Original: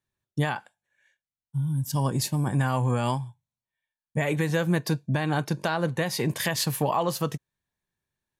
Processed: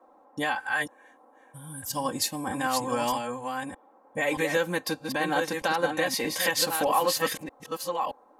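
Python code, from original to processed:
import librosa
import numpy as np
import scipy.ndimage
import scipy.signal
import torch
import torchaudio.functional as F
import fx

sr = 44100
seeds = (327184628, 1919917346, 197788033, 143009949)

y = fx.reverse_delay(x, sr, ms=624, wet_db=-5)
y = fx.graphic_eq_15(y, sr, hz=(100, 250, 1600, 10000), db=(6, -4, 10, 10), at=(0.57, 1.85))
y = fx.dmg_noise_band(y, sr, seeds[0], low_hz=220.0, high_hz=1000.0, level_db=-58.0)
y = fx.peak_eq(y, sr, hz=170.0, db=-11.0, octaves=1.7)
y = y + 0.8 * np.pad(y, (int(3.8 * sr / 1000.0), 0))[:len(y)]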